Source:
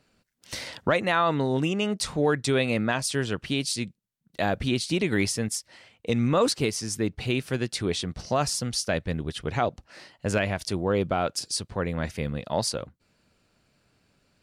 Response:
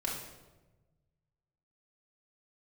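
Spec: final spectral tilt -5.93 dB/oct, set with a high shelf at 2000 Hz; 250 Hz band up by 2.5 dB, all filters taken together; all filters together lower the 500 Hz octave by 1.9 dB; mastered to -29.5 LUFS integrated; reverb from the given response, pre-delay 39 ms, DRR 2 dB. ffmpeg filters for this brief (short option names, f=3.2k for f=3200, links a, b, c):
-filter_complex "[0:a]equalizer=f=250:t=o:g=4,equalizer=f=500:t=o:g=-3,highshelf=f=2k:g=-7,asplit=2[a][b];[1:a]atrim=start_sample=2205,adelay=39[c];[b][c]afir=irnorm=-1:irlink=0,volume=-6dB[d];[a][d]amix=inputs=2:normalize=0,volume=-4dB"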